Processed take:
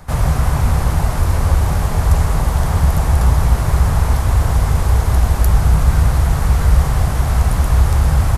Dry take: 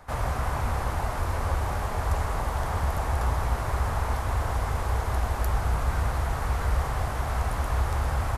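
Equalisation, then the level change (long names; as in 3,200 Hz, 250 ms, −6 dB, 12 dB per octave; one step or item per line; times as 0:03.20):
parametric band 160 Hz +8 dB 0.35 octaves
low-shelf EQ 410 Hz +12 dB
high-shelf EQ 2,600 Hz +11.5 dB
+2.0 dB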